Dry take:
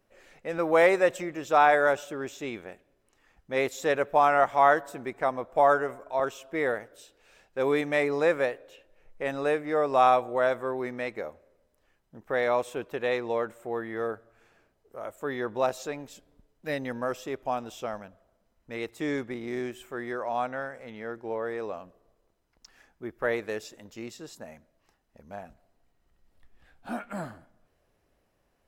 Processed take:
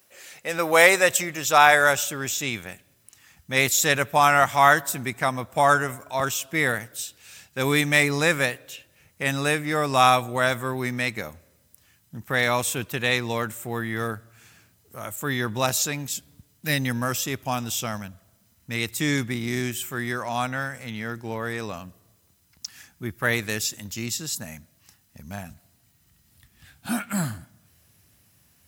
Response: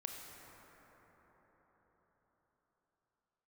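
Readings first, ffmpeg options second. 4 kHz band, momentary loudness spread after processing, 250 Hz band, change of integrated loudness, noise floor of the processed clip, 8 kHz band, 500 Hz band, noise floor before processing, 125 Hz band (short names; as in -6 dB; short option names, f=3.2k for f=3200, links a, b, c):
+15.5 dB, 19 LU, +5.5 dB, +4.5 dB, -63 dBFS, +21.0 dB, -0.5 dB, -72 dBFS, +14.5 dB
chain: -af "highpass=f=85:w=0.5412,highpass=f=85:w=1.3066,asubboost=boost=10:cutoff=150,crystalizer=i=9.5:c=0,volume=1dB"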